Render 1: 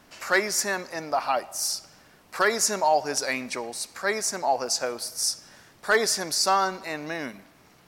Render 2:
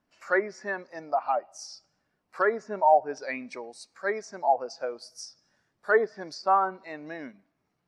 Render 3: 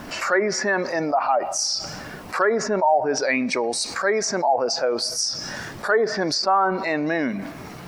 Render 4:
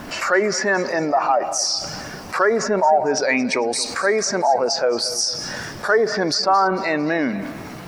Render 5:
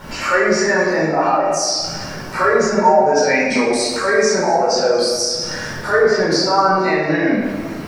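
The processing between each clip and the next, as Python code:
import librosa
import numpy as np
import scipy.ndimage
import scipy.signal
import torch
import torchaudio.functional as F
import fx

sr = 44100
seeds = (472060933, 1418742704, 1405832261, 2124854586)

y1 = fx.env_lowpass_down(x, sr, base_hz=1900.0, full_db=-19.5)
y1 = fx.spectral_expand(y1, sr, expansion=1.5)
y1 = y1 * 10.0 ** (2.0 / 20.0)
y2 = fx.env_flatten(y1, sr, amount_pct=70)
y3 = fx.echo_feedback(y2, sr, ms=225, feedback_pct=48, wet_db=-16.5)
y3 = y3 * 10.0 ** (2.5 / 20.0)
y4 = fx.room_shoebox(y3, sr, seeds[0], volume_m3=680.0, walls='mixed', distance_m=4.5)
y4 = y4 * 10.0 ** (-6.5 / 20.0)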